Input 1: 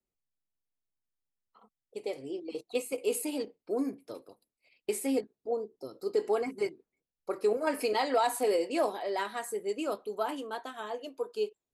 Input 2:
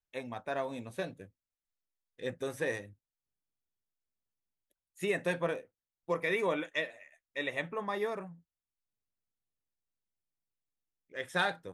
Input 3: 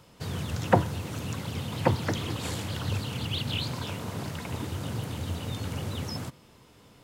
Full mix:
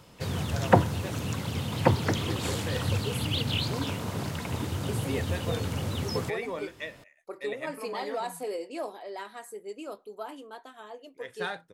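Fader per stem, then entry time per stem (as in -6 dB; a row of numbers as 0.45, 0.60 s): -6.5, -4.5, +2.0 dB; 0.00, 0.05, 0.00 s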